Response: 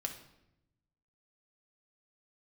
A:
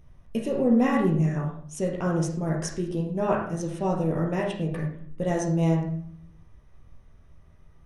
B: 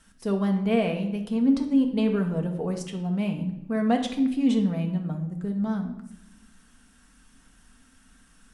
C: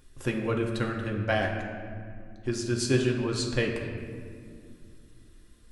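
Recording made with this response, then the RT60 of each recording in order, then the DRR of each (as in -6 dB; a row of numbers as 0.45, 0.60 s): B; 0.60, 0.85, 2.3 s; -2.0, 3.5, -0.5 dB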